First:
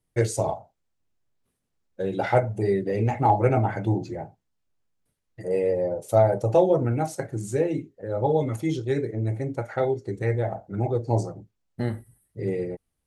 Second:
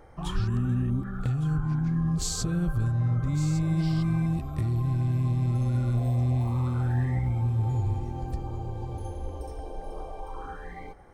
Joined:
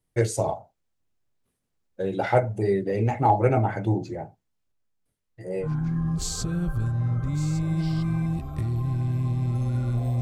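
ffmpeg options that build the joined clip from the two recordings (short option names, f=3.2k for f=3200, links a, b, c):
-filter_complex "[0:a]asettb=1/sr,asplit=3[a][b][c];[a]atrim=end=4.724[d];[b]atrim=start=4.72:end=5.68,asetpts=PTS-STARTPTS,afade=t=in:d=0.004:c=qsin,afade=t=out:st=0.956:d=0.004:c=qsin,flanger=delay=16:depth=7.1:speed=1.2[e];[c]atrim=start=5.676[f];[d][e]acrossfade=d=0.004:c1=hsin:c2=qsin[g];[g][f]acrossfade=d=0.004:c1=qsin:c2=hsin,apad=whole_dur=10.21,atrim=end=10.21,atrim=end=5.68,asetpts=PTS-STARTPTS[h];[1:a]atrim=start=1.6:end=6.21,asetpts=PTS-STARTPTS[i];[h][i]acrossfade=d=0.08:c1=tri:c2=tri"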